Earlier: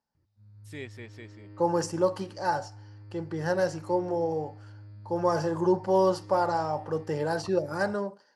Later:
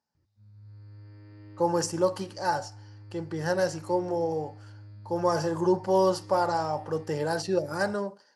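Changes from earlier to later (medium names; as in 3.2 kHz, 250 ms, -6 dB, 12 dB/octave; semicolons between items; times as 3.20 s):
first voice: muted; master: add treble shelf 4.3 kHz +7 dB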